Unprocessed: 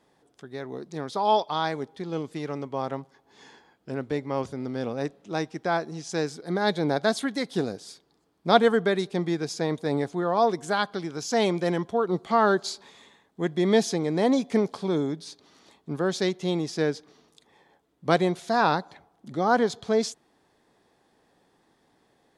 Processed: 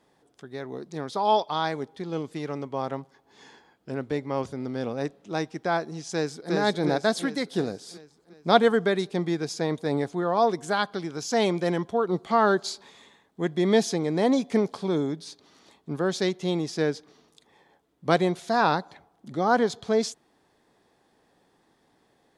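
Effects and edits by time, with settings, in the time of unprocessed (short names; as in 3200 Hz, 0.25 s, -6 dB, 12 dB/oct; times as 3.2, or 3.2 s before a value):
6.12–6.53 echo throw 0.36 s, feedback 55%, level -2 dB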